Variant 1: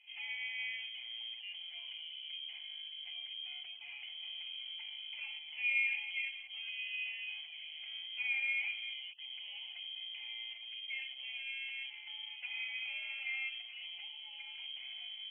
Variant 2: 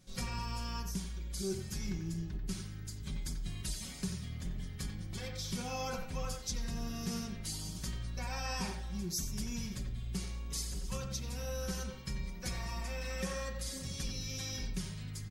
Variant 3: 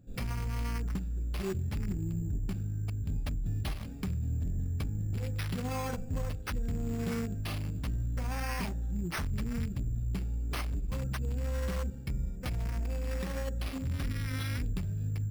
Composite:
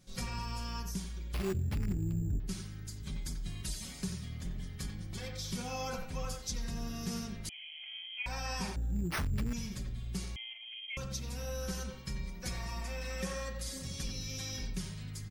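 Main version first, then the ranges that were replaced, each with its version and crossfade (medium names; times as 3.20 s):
2
1.34–2.40 s: from 3
7.49–8.26 s: from 1
8.76–9.53 s: from 3
10.36–10.97 s: from 1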